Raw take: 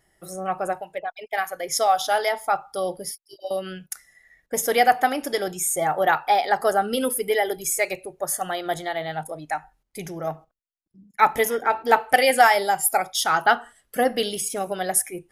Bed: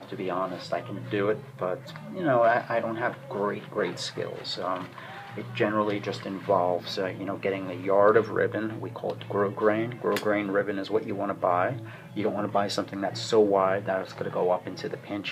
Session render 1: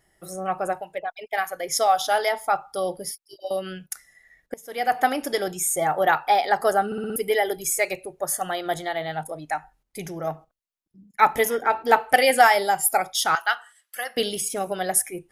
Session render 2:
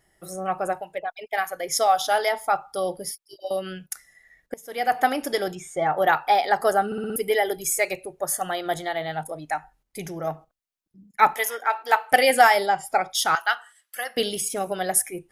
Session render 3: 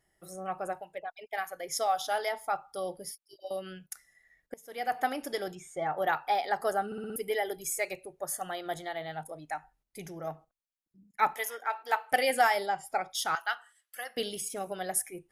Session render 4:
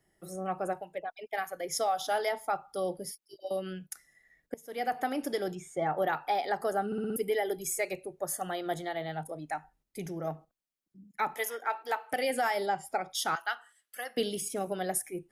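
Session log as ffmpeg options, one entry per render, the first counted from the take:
ffmpeg -i in.wav -filter_complex "[0:a]asettb=1/sr,asplit=3[link_01][link_02][link_03];[link_01]atrim=end=13.354[link_04];[link_02]atrim=start=13.35:end=14.17,asetpts=PTS-STARTPTS,afade=type=in:duration=0.004:curve=qsin,afade=type=out:start_time=0.816:duration=0.004:curve=qsin,highpass=1400[link_05];[link_03]atrim=start=14.166[link_06];[link_04][link_05]acrossfade=duration=0.004:curve1=hsin:curve2=qsin[link_07];[link_07][link_06]acrossfade=duration=0.004:curve1=qsin:curve2=hsin,asplit=7[link_08][link_09][link_10][link_11][link_12][link_13][link_14];[link_08]atrim=end=4.54,asetpts=PTS-STARTPTS,afade=type=out:start_time=4.536:duration=0.004:curve=hsin:silence=0.0707946[link_15];[link_09]atrim=start=4.54:end=6.922,asetpts=PTS-STARTPTS,afade=type=in:duration=0.48:curve=qua:silence=0.0707946[link_16];[link_10]atrim=start=6.858:end=6.922[link_17];[link_11]atrim=start=6.858:end=6.922[link_18];[link_12]atrim=start=6.858:end=6.922[link_19];[link_13]atrim=start=6.858:end=6.922[link_20];[link_14]atrim=start=7.158[link_21];[link_15][link_16]concat=n=2:v=0:a=1[link_22];[link_22][link_17]acrossfade=duration=0.004:curve1=hsin:curve2=hsin[link_23];[link_23][link_18]acrossfade=duration=0.004:curve1=hsin:curve2=hsin[link_24];[link_24][link_19]acrossfade=duration=0.004:curve1=hsin:curve2=hsin[link_25];[link_25][link_20]acrossfade=duration=0.004:curve1=hsin:curve2=hsin[link_26];[link_26][link_21]acrossfade=duration=0.004:curve1=hsin:curve2=hsin" out.wav
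ffmpeg -i in.wav -filter_complex "[0:a]asettb=1/sr,asplit=3[link_01][link_02][link_03];[link_01]atrim=end=5.554[link_04];[link_02]atrim=start=5.55:end=5.97,asetpts=PTS-STARTPTS,afade=type=in:duration=0.004:curve=qsin,afade=type=out:start_time=0.416:duration=0.004:curve=qsin,lowpass=3300[link_05];[link_03]atrim=start=5.966[link_06];[link_04][link_05]acrossfade=duration=0.004:curve1=hsin:curve2=qsin[link_07];[link_07][link_06]acrossfade=duration=0.004:curve1=qsin:curve2=hsin,asettb=1/sr,asplit=3[link_08][link_09][link_10];[link_08]atrim=end=11.344[link_11];[link_09]atrim=start=11.34:end=12.12,asetpts=PTS-STARTPTS,afade=type=in:duration=0.004:curve=qsin,afade=type=out:start_time=0.776:duration=0.004:curve=qsin,highpass=780[link_12];[link_10]atrim=start=12.116[link_13];[link_11][link_12]acrossfade=duration=0.004:curve1=hsin:curve2=qsin[link_14];[link_14][link_13]acrossfade=duration=0.004:curve1=qsin:curve2=hsin,asplit=3[link_15][link_16][link_17];[link_15]afade=type=out:start_time=12.65:duration=0.02[link_18];[link_16]lowpass=4300,afade=type=in:start_time=12.65:duration=0.02,afade=type=out:start_time=13.09:duration=0.02[link_19];[link_17]afade=type=in:start_time=13.09:duration=0.02[link_20];[link_18][link_19][link_20]amix=inputs=3:normalize=0" out.wav
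ffmpeg -i in.wav -af "volume=-9dB" out.wav
ffmpeg -i in.wav -filter_complex "[0:a]acrossover=split=130|440|6000[link_01][link_02][link_03][link_04];[link_02]acontrast=83[link_05];[link_01][link_05][link_03][link_04]amix=inputs=4:normalize=0,alimiter=limit=-20dB:level=0:latency=1:release=168" out.wav

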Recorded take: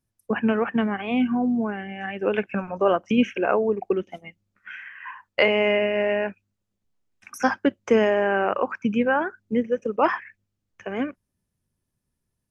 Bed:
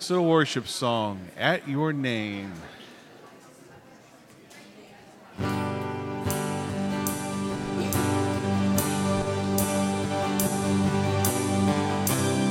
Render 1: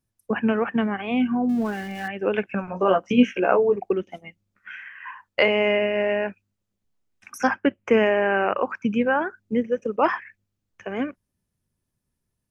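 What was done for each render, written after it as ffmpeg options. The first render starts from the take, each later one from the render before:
ffmpeg -i in.wav -filter_complex "[0:a]asettb=1/sr,asplit=3[link_01][link_02][link_03];[link_01]atrim=end=1.494[link_04];[link_02]atrim=start=1.49:end=2.08,asetpts=PTS-STARTPTS,afade=type=in:duration=0.004:curve=qsin,afade=type=out:start_time=0.586:duration=0.004:curve=qsin,aeval=exprs='val(0)+0.5*0.0133*sgn(val(0))':channel_layout=same[link_05];[link_03]atrim=start=2.076[link_06];[link_04][link_05]acrossfade=duration=0.004:curve1=hsin:curve2=qsin[link_07];[link_07][link_06]acrossfade=duration=0.004:curve1=qsin:curve2=hsin,asettb=1/sr,asplit=3[link_08][link_09][link_10];[link_08]atrim=end=2.664[link_11];[link_09]atrim=start=2.66:end=3.76,asetpts=PTS-STARTPTS,afade=type=in:duration=0.004:curve=qsin,afade=type=out:start_time=1.096:duration=0.004:curve=qsin,asplit=2[link_12][link_13];[link_13]adelay=16,volume=-4dB[link_14];[link_12][link_14]amix=inputs=2:normalize=0,atrim=end_sample=48510[link_15];[link_10]atrim=start=3.756[link_16];[link_11][link_15]acrossfade=duration=0.004:curve1=hsin:curve2=qsin[link_17];[link_17][link_16]acrossfade=duration=0.004:curve1=qsin:curve2=hsin,asettb=1/sr,asplit=3[link_18][link_19][link_20];[link_18]atrim=end=7.474[link_21];[link_19]atrim=start=7.47:end=8.57,asetpts=PTS-STARTPTS,afade=type=in:duration=0.004:curve=qsin,afade=type=out:start_time=1.096:duration=0.004:curve=qsin,highshelf=frequency=3200:width_type=q:width=3:gain=-6.5[link_22];[link_20]atrim=start=8.566[link_23];[link_21][link_22]acrossfade=duration=0.004:curve1=hsin:curve2=qsin[link_24];[link_24][link_23]acrossfade=duration=0.004:curve1=qsin:curve2=hsin" out.wav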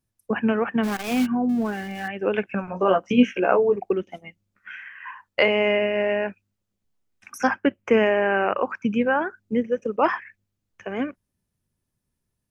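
ffmpeg -i in.wav -filter_complex "[0:a]asplit=3[link_01][link_02][link_03];[link_01]afade=type=out:start_time=0.83:duration=0.02[link_04];[link_02]acrusher=bits=6:dc=4:mix=0:aa=0.000001,afade=type=in:start_time=0.83:duration=0.02,afade=type=out:start_time=1.25:duration=0.02[link_05];[link_03]afade=type=in:start_time=1.25:duration=0.02[link_06];[link_04][link_05][link_06]amix=inputs=3:normalize=0" out.wav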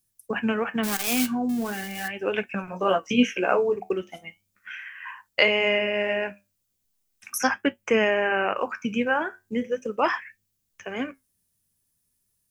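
ffmpeg -i in.wav -af "flanger=delay=6.1:depth=6.6:regen=-70:speed=0.38:shape=sinusoidal,crystalizer=i=5:c=0" out.wav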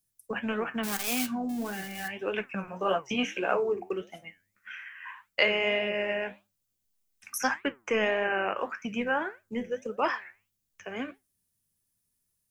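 ffmpeg -i in.wav -filter_complex "[0:a]acrossover=split=450[link_01][link_02];[link_01]asoftclip=type=tanh:threshold=-23dB[link_03];[link_03][link_02]amix=inputs=2:normalize=0,flanger=delay=4.5:depth=7.3:regen=84:speed=1.7:shape=triangular" out.wav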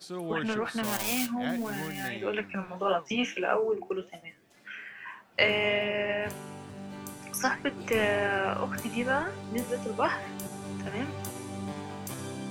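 ffmpeg -i in.wav -i bed.wav -filter_complex "[1:a]volume=-13.5dB[link_01];[0:a][link_01]amix=inputs=2:normalize=0" out.wav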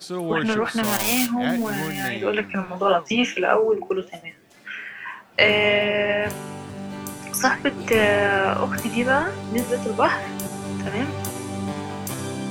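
ffmpeg -i in.wav -af "volume=8.5dB,alimiter=limit=-3dB:level=0:latency=1" out.wav

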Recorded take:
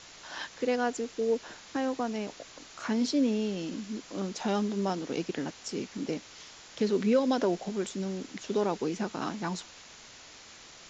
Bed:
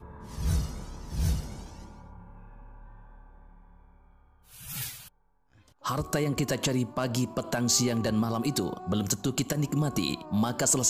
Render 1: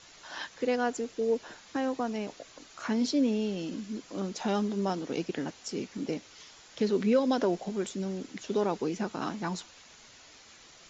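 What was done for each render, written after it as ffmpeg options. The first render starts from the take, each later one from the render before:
ffmpeg -i in.wav -af "afftdn=noise_reduction=6:noise_floor=-51" out.wav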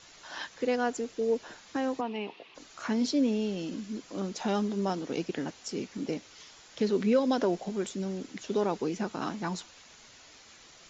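ffmpeg -i in.wav -filter_complex "[0:a]asplit=3[link_01][link_02][link_03];[link_01]afade=type=out:start_time=2:duration=0.02[link_04];[link_02]highpass=200,equalizer=frequency=270:width_type=q:width=4:gain=-4,equalizer=frequency=380:width_type=q:width=4:gain=4,equalizer=frequency=590:width_type=q:width=4:gain=-9,equalizer=frequency=910:width_type=q:width=4:gain=6,equalizer=frequency=1500:width_type=q:width=4:gain=-9,equalizer=frequency=2700:width_type=q:width=4:gain=9,lowpass=frequency=3700:width=0.5412,lowpass=frequency=3700:width=1.3066,afade=type=in:start_time=2:duration=0.02,afade=type=out:start_time=2.54:duration=0.02[link_05];[link_03]afade=type=in:start_time=2.54:duration=0.02[link_06];[link_04][link_05][link_06]amix=inputs=3:normalize=0" out.wav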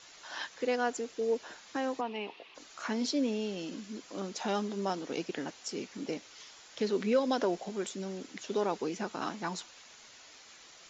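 ffmpeg -i in.wav -af "lowshelf=frequency=240:gain=-10.5" out.wav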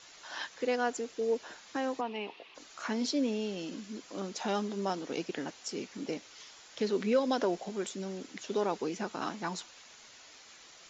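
ffmpeg -i in.wav -af anull out.wav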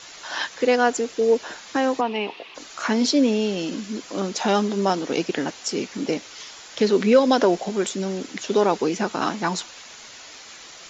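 ffmpeg -i in.wav -af "volume=12dB" out.wav

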